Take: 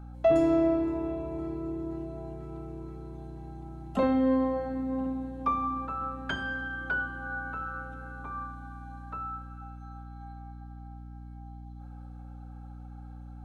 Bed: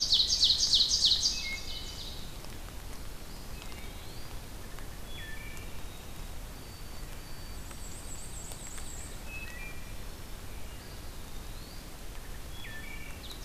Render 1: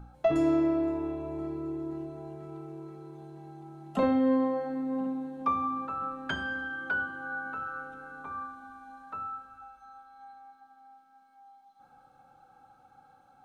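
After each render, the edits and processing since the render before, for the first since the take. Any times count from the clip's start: de-hum 60 Hz, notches 11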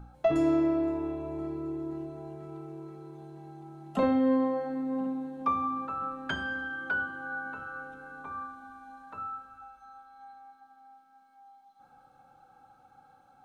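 7.21–9.18 notch 1300 Hz, Q 13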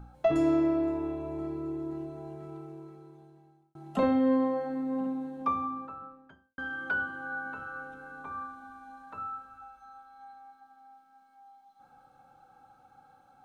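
2.46–3.75 fade out; 5.29–6.58 studio fade out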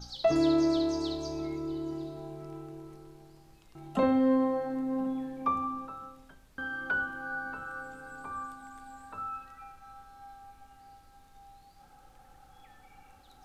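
add bed -18.5 dB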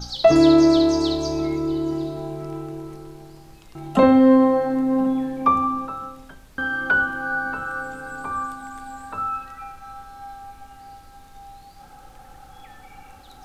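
gain +11.5 dB

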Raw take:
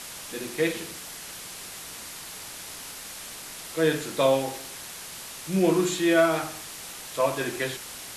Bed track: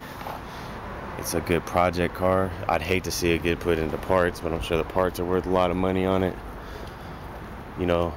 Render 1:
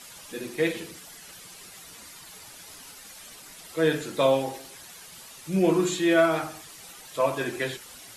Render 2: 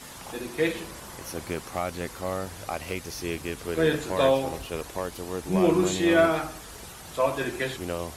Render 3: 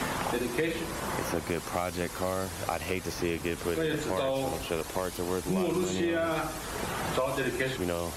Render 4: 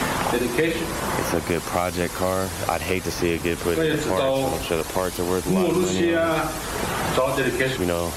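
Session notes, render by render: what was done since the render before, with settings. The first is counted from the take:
denoiser 10 dB, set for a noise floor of -41 dBFS
add bed track -9 dB
limiter -19.5 dBFS, peak gain reduction 11 dB; three-band squash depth 100%
gain +8 dB

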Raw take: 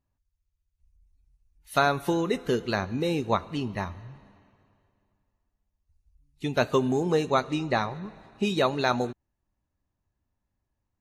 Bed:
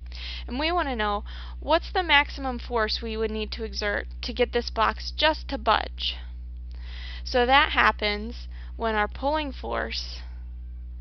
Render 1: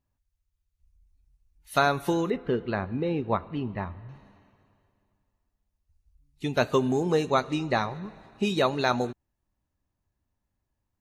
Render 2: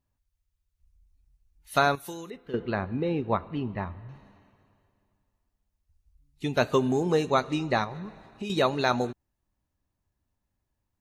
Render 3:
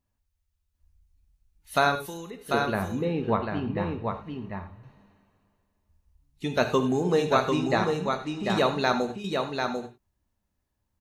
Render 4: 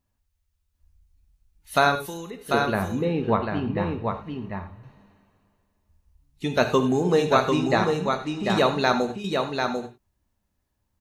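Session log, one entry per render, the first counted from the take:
2.3–4.09 air absorption 410 m
1.95–2.54 pre-emphasis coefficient 0.8; 7.84–8.5 compressor 3:1, threshold -33 dBFS
echo 0.744 s -4.5 dB; non-linear reverb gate 0.12 s flat, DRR 8 dB
gain +3 dB

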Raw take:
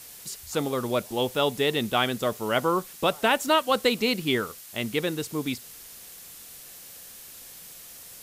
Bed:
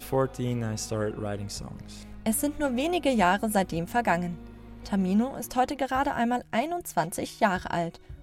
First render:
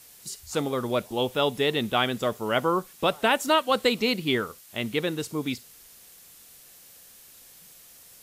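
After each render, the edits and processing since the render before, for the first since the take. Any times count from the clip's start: noise print and reduce 6 dB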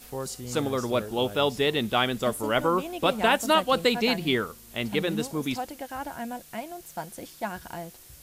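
add bed -9 dB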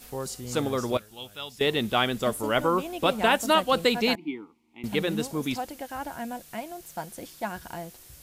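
0.97–1.61 passive tone stack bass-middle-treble 5-5-5; 4.15–4.84 vowel filter u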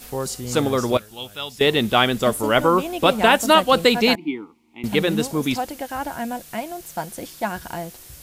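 gain +7 dB; limiter -2 dBFS, peak gain reduction 1 dB

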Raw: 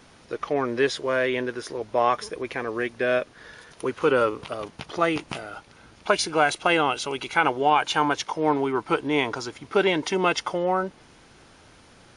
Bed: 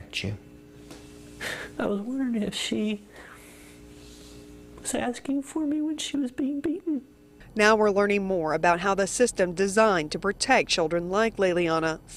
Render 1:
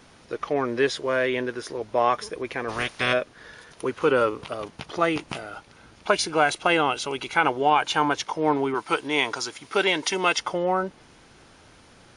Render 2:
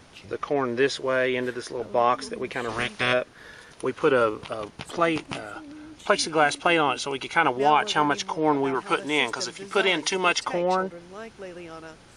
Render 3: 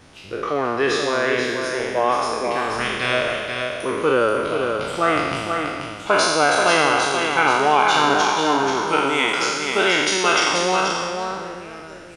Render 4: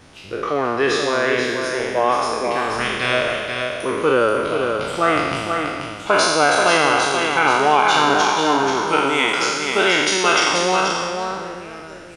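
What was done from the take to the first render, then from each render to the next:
2.68–3.12 spectral limiter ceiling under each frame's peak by 26 dB; 8.74–10.38 tilt +2.5 dB/oct
add bed -16 dB
spectral trails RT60 1.61 s; echo 0.483 s -5.5 dB
gain +1.5 dB; limiter -3 dBFS, peak gain reduction 2 dB

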